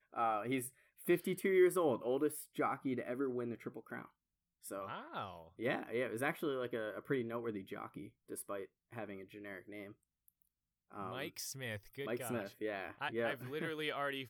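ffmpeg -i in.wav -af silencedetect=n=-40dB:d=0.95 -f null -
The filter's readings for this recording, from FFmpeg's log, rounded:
silence_start: 9.83
silence_end: 10.95 | silence_duration: 1.12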